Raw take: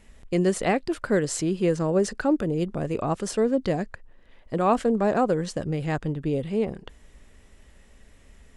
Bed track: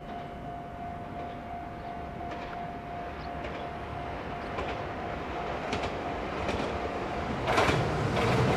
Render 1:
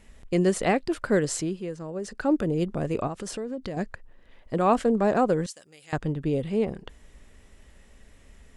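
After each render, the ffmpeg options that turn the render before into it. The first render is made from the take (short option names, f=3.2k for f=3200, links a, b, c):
-filter_complex "[0:a]asettb=1/sr,asplit=3[a][b][c];[a]atrim=end=3.074[d];[b]atrim=start=3.07:end=3.77,asetpts=PTS-STARTPTS,afade=t=in:d=0.004:c=qsin,afade=t=out:st=0.696:d=0.004:c=qsin,acompressor=threshold=-31dB:ratio=4:attack=3.2:release=140:knee=1:detection=peak[e];[c]atrim=start=3.766[f];[d][e]acrossfade=d=0.004:c1=hsin:c2=qsin[g];[g][f]acrossfade=d=0.004:c1=qsin:c2=hsin,asettb=1/sr,asplit=3[h][i][j];[h]atrim=end=5.464[k];[i]atrim=start=5.46:end=5.93,asetpts=PTS-STARTPTS,afade=t=in:d=0.004:c=qsin,afade=t=out:st=0.466:d=0.004:c=qsin,aderivative[l];[j]atrim=start=5.926[m];[k][l]acrossfade=d=0.004:c1=hsin:c2=qsin[n];[n][m]acrossfade=d=0.004:c1=qsin:c2=hsin,asplit=3[o][p][q];[o]atrim=end=1.65,asetpts=PTS-STARTPTS,afade=t=out:st=1.31:d=0.34:silence=0.266073[r];[p]atrim=start=1.65:end=2.01,asetpts=PTS-STARTPTS,volume=-11.5dB[s];[q]atrim=start=2.01,asetpts=PTS-STARTPTS,afade=t=in:d=0.34:silence=0.266073[t];[r][s][t]concat=n=3:v=0:a=1"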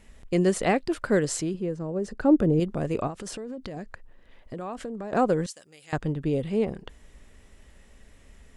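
-filter_complex "[0:a]asettb=1/sr,asplit=3[a][b][c];[a]atrim=end=1.544[d];[b]atrim=start=1.54:end=2.6,asetpts=PTS-STARTPTS,afade=t=in:d=0.004:c=qsin,afade=t=out:st=1.056:d=0.004:c=qsin,tiltshelf=f=970:g=5.5[e];[c]atrim=start=2.596[f];[d][e]acrossfade=d=0.004:c1=hsin:c2=qsin[g];[g][f]acrossfade=d=0.004:c1=qsin:c2=hsin,asettb=1/sr,asplit=3[h][i][j];[h]atrim=end=3.104[k];[i]atrim=start=3.1:end=5.13,asetpts=PTS-STARTPTS,afade=t=in:d=0.004:c=qsin,afade=t=out:st=2.026:d=0.004:c=qsin,acompressor=threshold=-32dB:ratio=6:attack=3.2:release=140:knee=1:detection=peak[l];[j]atrim=start=5.126[m];[k][l]acrossfade=d=0.004:c1=hsin:c2=qsin[n];[n][m]acrossfade=d=0.004:c1=qsin:c2=hsin"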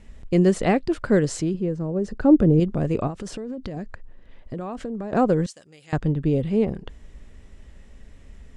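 -af "lowpass=8k,lowshelf=f=340:g=8"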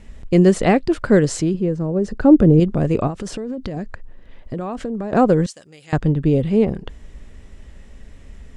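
-af "volume=5dB,alimiter=limit=-2dB:level=0:latency=1"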